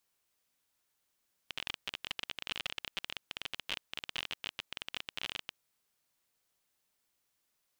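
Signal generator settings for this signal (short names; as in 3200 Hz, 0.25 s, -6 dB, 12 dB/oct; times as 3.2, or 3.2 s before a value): random clicks 29/s -20 dBFS 4.08 s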